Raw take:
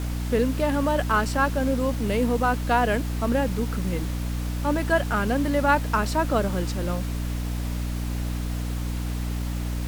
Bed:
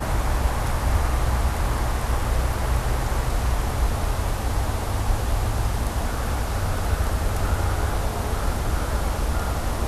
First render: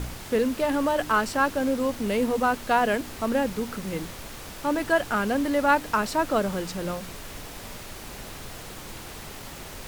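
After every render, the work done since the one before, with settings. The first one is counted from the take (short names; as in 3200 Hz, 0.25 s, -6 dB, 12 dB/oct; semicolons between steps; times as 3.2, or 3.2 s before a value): de-hum 60 Hz, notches 5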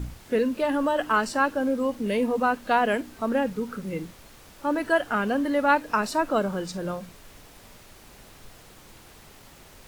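noise print and reduce 10 dB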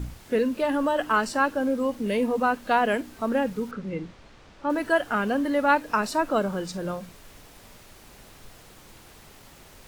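3.71–4.7 air absorption 130 m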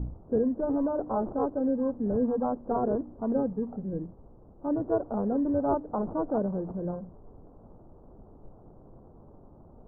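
sample-and-hold 21×; Gaussian blur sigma 11 samples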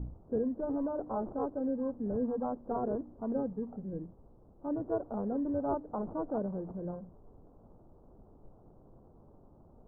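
gain -6 dB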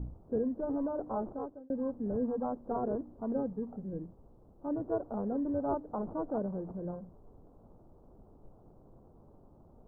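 1.2–1.7 fade out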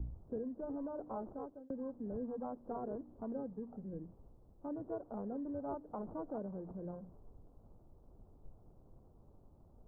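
compressor 2.5:1, threshold -43 dBFS, peak gain reduction 10.5 dB; three-band expander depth 40%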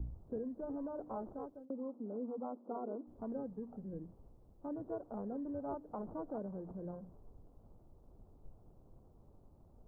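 1.65–3.07 brick-wall FIR band-pass 190–1500 Hz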